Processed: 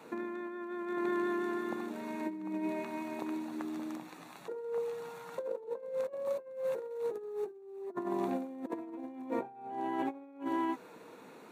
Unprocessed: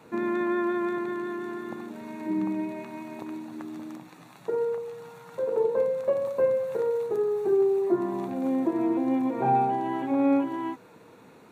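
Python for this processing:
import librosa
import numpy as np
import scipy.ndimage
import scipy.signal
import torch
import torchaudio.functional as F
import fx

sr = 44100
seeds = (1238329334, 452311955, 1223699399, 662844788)

y = fx.over_compress(x, sr, threshold_db=-31.0, ratio=-0.5)
y = scipy.signal.sosfilt(scipy.signal.butter(2, 220.0, 'highpass', fs=sr, output='sos'), y)
y = y * 10.0 ** (-4.5 / 20.0)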